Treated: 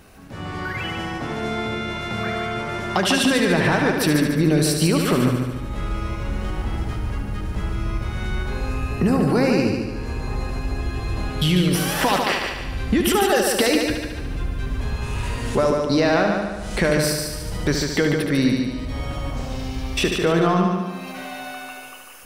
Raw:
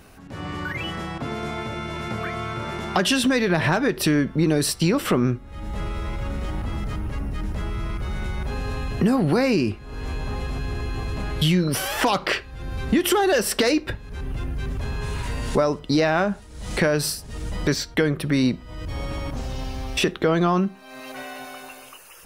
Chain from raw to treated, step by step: 8.42–10.81 s: peaking EQ 3.3 kHz -7.5 dB 0.36 oct; multi-head delay 73 ms, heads first and second, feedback 54%, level -7 dB

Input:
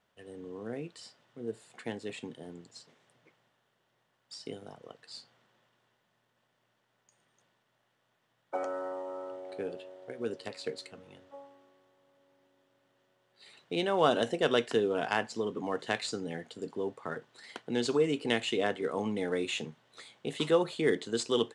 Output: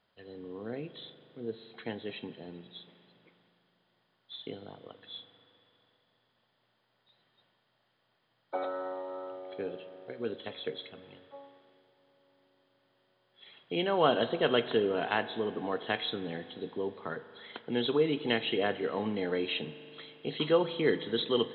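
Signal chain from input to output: knee-point frequency compression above 3.1 kHz 4:1; spring tank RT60 3 s, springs 40 ms, chirp 70 ms, DRR 13.5 dB

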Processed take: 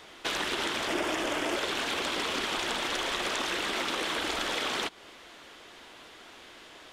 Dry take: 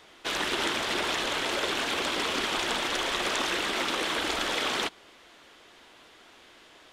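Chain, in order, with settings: compression 3:1, threshold -34 dBFS, peak gain reduction 7.5 dB; 0.87–1.56 s: graphic EQ with 31 bands 315 Hz +10 dB, 630 Hz +6 dB, 4 kHz -10 dB; trim +4 dB

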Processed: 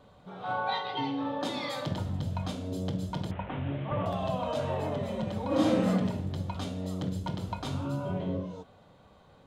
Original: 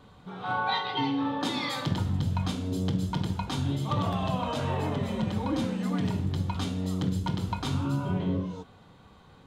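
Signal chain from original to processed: 3.31–4.06 s: one-bit delta coder 16 kbps, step -35 dBFS; peaking EQ 600 Hz +10.5 dB 0.51 oct; 5.47–5.88 s: reverb throw, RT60 0.82 s, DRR -8 dB; trim -5 dB

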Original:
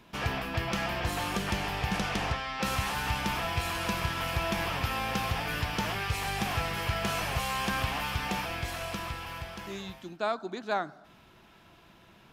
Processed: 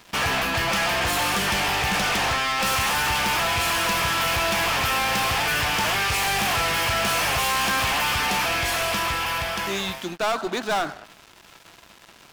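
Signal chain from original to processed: bass shelf 450 Hz -10.5 dB; band-stop 4 kHz, Q 26; waveshaping leveller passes 5

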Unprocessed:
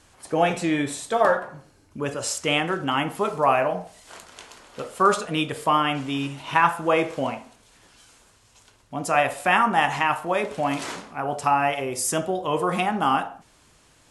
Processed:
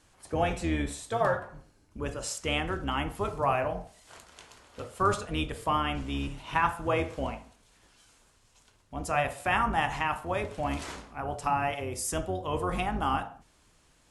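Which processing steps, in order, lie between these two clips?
octave divider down 2 oct, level +1 dB; trim -7.5 dB

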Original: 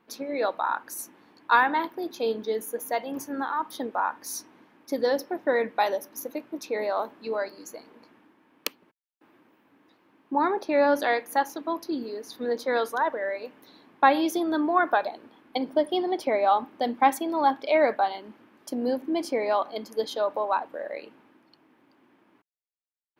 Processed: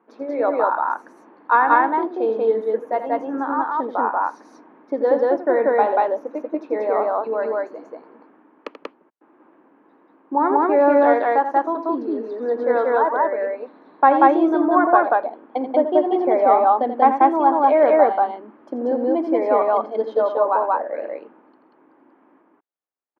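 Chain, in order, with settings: Butterworth band-pass 590 Hz, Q 0.54; loudspeakers at several distances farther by 29 m -10 dB, 64 m 0 dB; trim +5.5 dB

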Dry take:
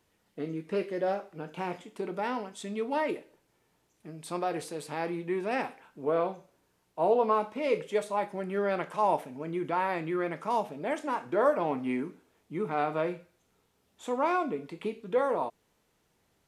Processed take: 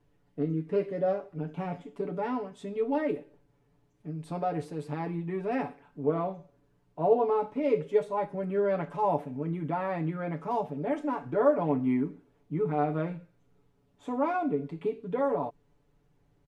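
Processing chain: tilt EQ -3.5 dB/octave; comb 7 ms, depth 90%; trim -5 dB

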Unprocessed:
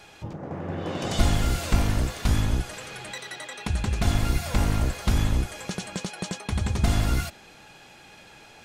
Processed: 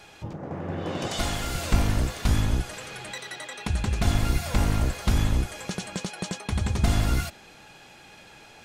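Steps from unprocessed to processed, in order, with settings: 1.07–1.55 s: bass shelf 320 Hz -10 dB

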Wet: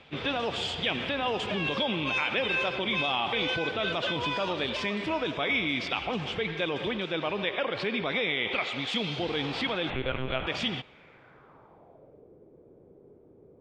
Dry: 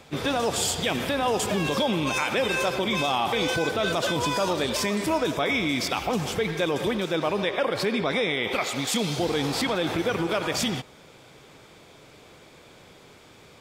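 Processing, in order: low-pass sweep 3 kHz -> 420 Hz, 10.83–12.30 s; 9.90–10.47 s: monotone LPC vocoder at 8 kHz 130 Hz; trim -6 dB

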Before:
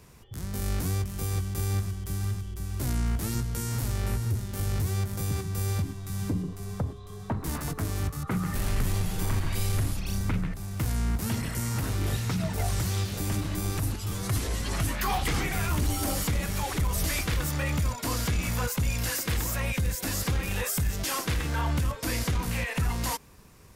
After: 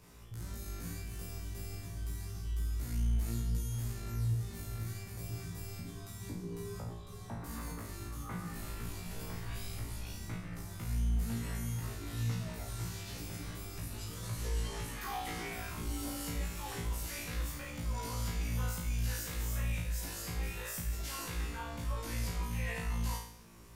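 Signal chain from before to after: peak limiter -29.5 dBFS, peak gain reduction 9.5 dB; flutter echo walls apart 3 m, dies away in 0.62 s; trim -7 dB

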